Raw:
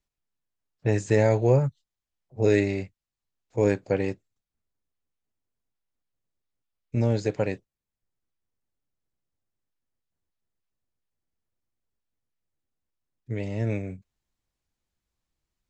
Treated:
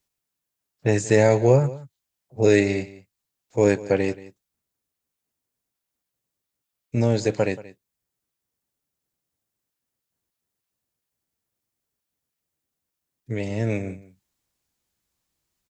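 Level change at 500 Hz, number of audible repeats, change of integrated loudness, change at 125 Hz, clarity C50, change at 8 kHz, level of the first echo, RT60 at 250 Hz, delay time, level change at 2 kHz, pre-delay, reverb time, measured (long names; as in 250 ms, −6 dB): +4.5 dB, 1, +4.0 dB, +1.5 dB, no reverb audible, +9.5 dB, −18.5 dB, no reverb audible, 179 ms, +5.5 dB, no reverb audible, no reverb audible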